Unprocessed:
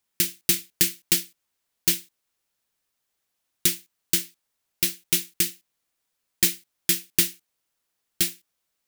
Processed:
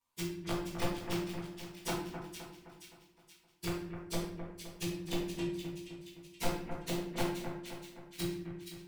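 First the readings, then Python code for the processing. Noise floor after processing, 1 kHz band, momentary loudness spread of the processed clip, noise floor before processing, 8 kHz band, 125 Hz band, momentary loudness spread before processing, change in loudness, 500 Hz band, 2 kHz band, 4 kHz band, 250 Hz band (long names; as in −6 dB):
−67 dBFS, +10.5 dB, 12 LU, −79 dBFS, −21.0 dB, −0.5 dB, 5 LU, −16.0 dB, +3.0 dB, −10.5 dB, −15.0 dB, −0.5 dB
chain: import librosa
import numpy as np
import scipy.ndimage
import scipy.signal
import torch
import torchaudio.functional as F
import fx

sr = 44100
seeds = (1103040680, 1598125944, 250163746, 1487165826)

y = fx.partial_stretch(x, sr, pct=108)
y = fx.peak_eq(y, sr, hz=970.0, db=15.0, octaves=0.3)
y = fx.env_lowpass_down(y, sr, base_hz=580.0, full_db=-26.0)
y = (np.mod(10.0 ** (26.5 / 20.0) * y + 1.0, 2.0) - 1.0) / 10.0 ** (26.5 / 20.0)
y = fx.echo_split(y, sr, split_hz=2100.0, low_ms=259, high_ms=475, feedback_pct=52, wet_db=-7.5)
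y = fx.room_shoebox(y, sr, seeds[0], volume_m3=130.0, walls='mixed', distance_m=1.7)
y = F.gain(torch.from_numpy(y), -5.5).numpy()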